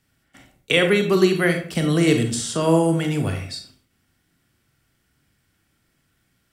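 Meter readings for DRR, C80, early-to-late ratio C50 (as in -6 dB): 5.0 dB, 11.5 dB, 8.0 dB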